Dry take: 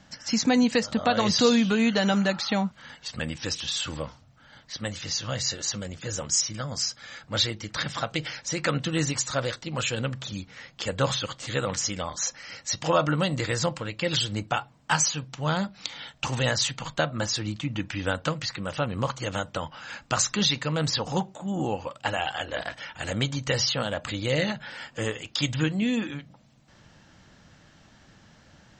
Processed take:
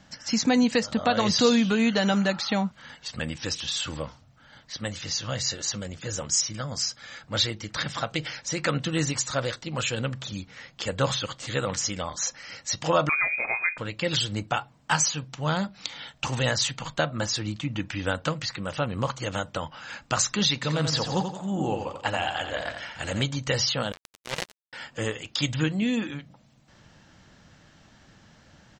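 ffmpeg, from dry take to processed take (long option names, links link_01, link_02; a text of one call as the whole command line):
ffmpeg -i in.wav -filter_complex "[0:a]asettb=1/sr,asplit=3[link_01][link_02][link_03];[link_01]atrim=end=13.094[link_04];[link_02]atrim=start=13.09:end=13.78,asetpts=PTS-STARTPTS,afade=type=in:duration=0.004:curve=qsin,afade=type=out:start_time=0.686:duration=0.004:curve=qsin,lowpass=frequency=2200:width_type=q:width=0.5098,lowpass=frequency=2200:width_type=q:width=0.6013,lowpass=frequency=2200:width_type=q:width=0.9,lowpass=frequency=2200:width_type=q:width=2.563,afreqshift=-2600[link_05];[link_03]atrim=start=13.776[link_06];[link_04][link_05]acrossfade=duration=0.004:curve1=hsin:curve2=qsin[link_07];[link_07][link_06]acrossfade=duration=0.004:curve1=qsin:curve2=hsin,asplit=3[link_08][link_09][link_10];[link_08]afade=type=out:start_time=20.62:duration=0.02[link_11];[link_09]aecho=1:1:86|172|258|344|430:0.447|0.192|0.0826|0.0355|0.0153,afade=type=in:start_time=20.62:duration=0.02,afade=type=out:start_time=23.21:duration=0.02[link_12];[link_10]afade=type=in:start_time=23.21:duration=0.02[link_13];[link_11][link_12][link_13]amix=inputs=3:normalize=0,asettb=1/sr,asplit=3[link_14][link_15][link_16];[link_14]atrim=end=23.924[link_17];[link_15]atrim=start=23.92:end=24.73,asetpts=PTS-STARTPTS,afade=type=in:duration=0.004:curve=qsin,afade=type=out:start_time=0.806:duration=0.004:curve=qsin,acrusher=bits=2:mix=0:aa=0.5[link_18];[link_16]atrim=start=24.726[link_19];[link_17][link_18]acrossfade=duration=0.004:curve1=hsin:curve2=qsin[link_20];[link_20][link_19]acrossfade=duration=0.004:curve1=qsin:curve2=hsin" out.wav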